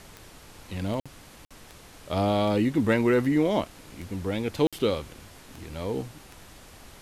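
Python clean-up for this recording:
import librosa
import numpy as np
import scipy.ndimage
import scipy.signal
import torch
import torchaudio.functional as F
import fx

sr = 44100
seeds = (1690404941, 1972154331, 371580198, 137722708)

y = fx.fix_declick_ar(x, sr, threshold=10.0)
y = fx.fix_interpolate(y, sr, at_s=(1.0, 1.45, 4.67), length_ms=56.0)
y = fx.noise_reduce(y, sr, print_start_s=1.5, print_end_s=2.0, reduce_db=22.0)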